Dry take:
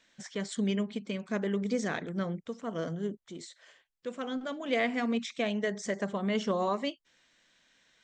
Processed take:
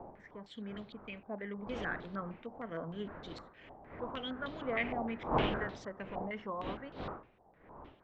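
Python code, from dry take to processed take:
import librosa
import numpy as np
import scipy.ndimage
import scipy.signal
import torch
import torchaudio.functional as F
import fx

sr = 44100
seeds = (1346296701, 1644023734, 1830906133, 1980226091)

y = fx.doppler_pass(x, sr, speed_mps=6, closest_m=7.5, pass_at_s=3.62)
y = fx.dmg_wind(y, sr, seeds[0], corner_hz=600.0, level_db=-39.0)
y = fx.filter_held_lowpass(y, sr, hz=6.5, low_hz=810.0, high_hz=3900.0)
y = y * 10.0 ** (-6.5 / 20.0)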